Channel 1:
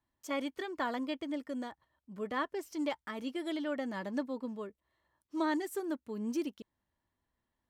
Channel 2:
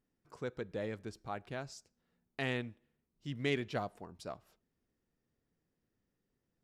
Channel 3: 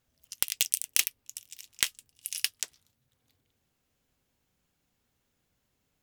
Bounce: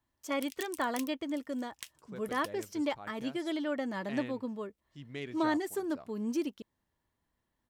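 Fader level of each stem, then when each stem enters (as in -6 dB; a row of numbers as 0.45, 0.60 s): +2.0, -7.5, -18.5 dB; 0.00, 1.70, 0.00 s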